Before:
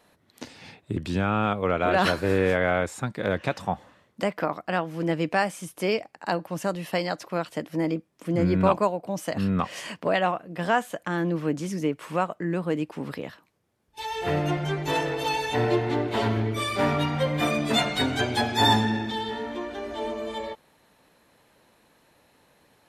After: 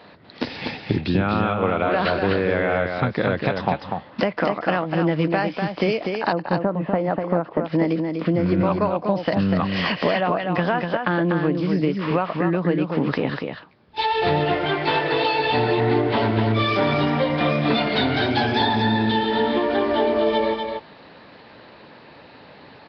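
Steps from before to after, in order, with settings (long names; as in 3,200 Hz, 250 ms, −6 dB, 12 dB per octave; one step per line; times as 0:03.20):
0:06.32–0:07.64: low-pass filter 1,100 Hz 12 dB per octave
0:14.44–0:15.40: low-shelf EQ 420 Hz −9.5 dB
high-pass filter 80 Hz 12 dB per octave
in parallel at +2.5 dB: brickwall limiter −15.5 dBFS, peak gain reduction 7 dB
on the sum: downward compressor 8 to 1, threshold −26 dBFS, peak gain reduction 15 dB
on a send: single-tap delay 245 ms −5 dB
on the sum: level +8 dB
Nellymoser 22 kbit/s 11,025 Hz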